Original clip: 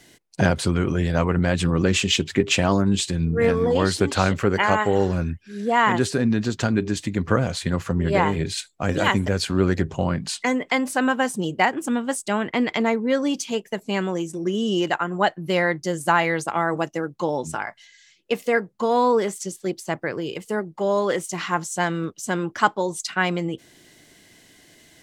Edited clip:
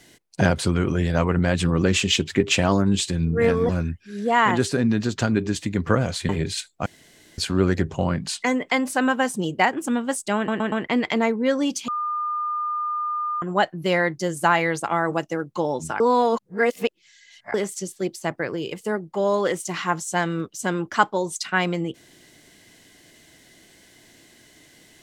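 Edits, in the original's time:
3.69–5.10 s: delete
7.70–8.29 s: delete
8.86–9.38 s: room tone
12.36 s: stutter 0.12 s, 4 plays
13.52–15.06 s: bleep 1.21 kHz -23 dBFS
17.64–19.18 s: reverse

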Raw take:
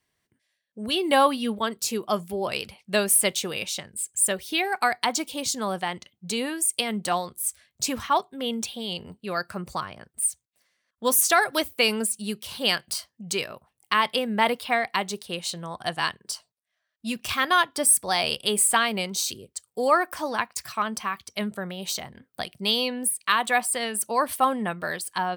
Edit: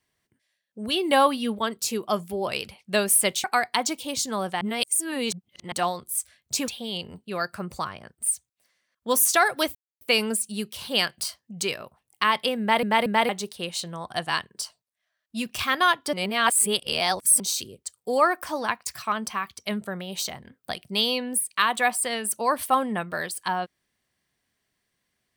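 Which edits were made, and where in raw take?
3.44–4.73 s: delete
5.90–7.01 s: reverse
7.97–8.64 s: delete
11.71 s: insert silence 0.26 s
14.30 s: stutter in place 0.23 s, 3 plays
17.83–19.10 s: reverse

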